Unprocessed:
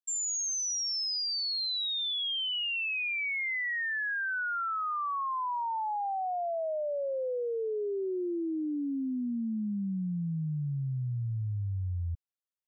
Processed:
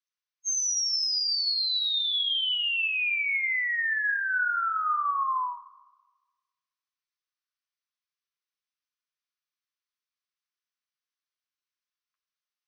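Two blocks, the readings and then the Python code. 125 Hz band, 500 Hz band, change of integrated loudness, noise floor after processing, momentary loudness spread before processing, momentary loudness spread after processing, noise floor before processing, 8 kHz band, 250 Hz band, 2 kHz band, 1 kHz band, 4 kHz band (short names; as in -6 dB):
under -40 dB, under -40 dB, +6.5 dB, under -85 dBFS, 5 LU, 4 LU, -33 dBFS, n/a, under -40 dB, +5.0 dB, +1.5 dB, +5.0 dB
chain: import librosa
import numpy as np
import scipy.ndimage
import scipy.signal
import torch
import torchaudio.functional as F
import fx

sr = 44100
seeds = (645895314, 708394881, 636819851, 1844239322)

y = fx.brickwall_bandpass(x, sr, low_hz=980.0, high_hz=6400.0)
y = fx.rev_fdn(y, sr, rt60_s=1.3, lf_ratio=1.4, hf_ratio=0.85, size_ms=12.0, drr_db=7.5)
y = y * librosa.db_to_amplitude(4.5)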